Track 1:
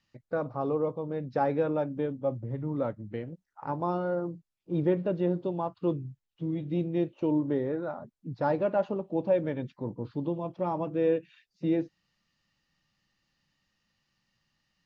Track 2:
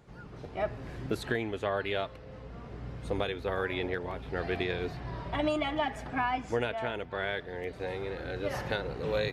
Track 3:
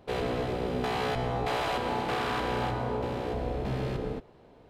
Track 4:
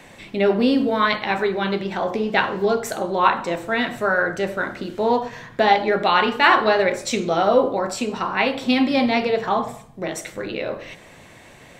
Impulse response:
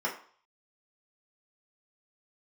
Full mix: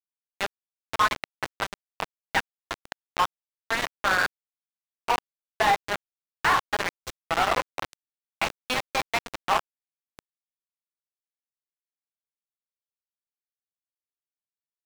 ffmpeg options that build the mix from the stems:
-filter_complex "[0:a]acrossover=split=370 2300:gain=0.158 1 0.158[a][b][c];[a][b][c]amix=inputs=3:normalize=0,acrusher=bits=7:mix=0:aa=0.000001,volume=-12.5dB,asplit=2[d][e];[1:a]adelay=2100,volume=-17.5dB[f];[2:a]highpass=f=1.1k:p=1,asoftclip=type=hard:threshold=-40dB,volume=-8dB[g];[3:a]highpass=f=750:w=0.5412,highpass=f=750:w=1.3066,volume=-4dB[h];[e]apad=whole_len=520212[i];[h][i]sidechaingate=range=-33dB:threshold=-52dB:ratio=16:detection=peak[j];[d][f][g][j]amix=inputs=4:normalize=0,acrusher=bits=3:mix=0:aa=0.000001,asplit=2[k][l];[l]highpass=f=720:p=1,volume=22dB,asoftclip=type=tanh:threshold=-7dB[m];[k][m]amix=inputs=2:normalize=0,lowpass=f=1.6k:p=1,volume=-6dB,alimiter=limit=-14dB:level=0:latency=1:release=405"

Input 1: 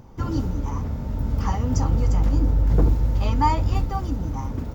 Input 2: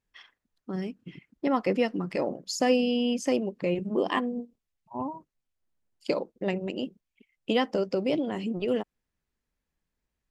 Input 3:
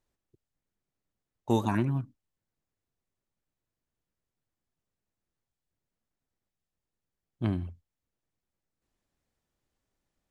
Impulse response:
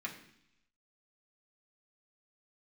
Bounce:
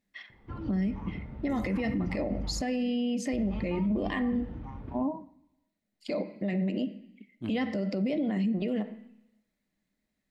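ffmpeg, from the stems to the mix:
-filter_complex "[0:a]lowpass=f=3.4k:w=0.5412,lowpass=f=3.4k:w=1.3066,alimiter=limit=-13.5dB:level=0:latency=1:release=406,adelay=300,volume=-13.5dB,asplit=3[a][b][c];[a]atrim=end=2.61,asetpts=PTS-STARTPTS,afade=t=out:st=2.606:d=0.004:c=hsin[d];[b]atrim=start=2.61:end=3.33,asetpts=PTS-STARTPTS,volume=0[e];[c]atrim=start=3.33,asetpts=PTS-STARTPTS,afade=t=in:d=0.004:c=hsin[f];[d][e][f]concat=n=3:v=0:a=1,asplit=2[g][h];[h]volume=-7.5dB[i];[1:a]equalizer=f=200:t=o:w=0.33:g=9,equalizer=f=400:t=o:w=0.33:g=-4,equalizer=f=630:t=o:w=0.33:g=11,equalizer=f=2k:t=o:w=0.33:g=11,equalizer=f=4k:t=o:w=0.33:g=9,volume=-5.5dB,asplit=2[j][k];[k]volume=-5dB[l];[2:a]highshelf=f=2k:g=11.5,volume=-15dB[m];[j][m]amix=inputs=2:normalize=0,equalizer=f=260:t=o:w=1.4:g=12,alimiter=limit=-16.5dB:level=0:latency=1,volume=0dB[n];[3:a]atrim=start_sample=2205[o];[i][l]amix=inputs=2:normalize=0[p];[p][o]afir=irnorm=-1:irlink=0[q];[g][n][q]amix=inputs=3:normalize=0,alimiter=limit=-22.5dB:level=0:latency=1:release=59"

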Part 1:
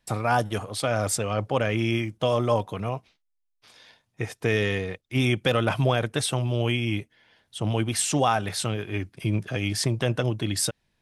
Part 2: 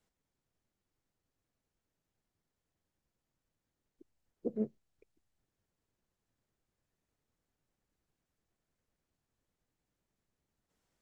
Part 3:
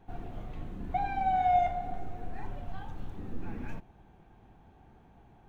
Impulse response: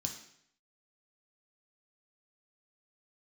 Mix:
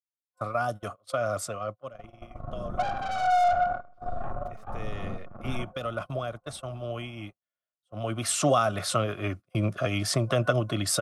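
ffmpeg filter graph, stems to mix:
-filter_complex "[0:a]highpass=57,acrossover=split=370|3000[a][b][c];[b]acompressor=threshold=-27dB:ratio=10[d];[a][d][c]amix=inputs=3:normalize=0,adelay=300,volume=9.5dB,afade=t=out:st=1.34:d=0.77:silence=0.281838,afade=t=in:st=4.62:d=0.7:silence=0.421697,afade=t=in:st=7.96:d=0.41:silence=0.298538[e];[1:a]lowshelf=f=440:g=-9.5,acrusher=bits=7:dc=4:mix=0:aa=0.000001,volume=-16.5dB[f];[2:a]highshelf=f=1.7k:t=q:w=1.5:g=-13,dynaudnorm=f=150:g=7:m=12dB,aeval=exprs='(tanh(17.8*val(0)+0.65)-tanh(0.65))/17.8':c=same,adelay=1850,volume=-8dB,asplit=2[g][h];[h]volume=-9dB[i];[3:a]atrim=start_sample=2205[j];[i][j]afir=irnorm=-1:irlink=0[k];[e][f][g][k]amix=inputs=4:normalize=0,agate=range=-29dB:threshold=-38dB:ratio=16:detection=peak,superequalizer=8b=3.55:10b=3.98"

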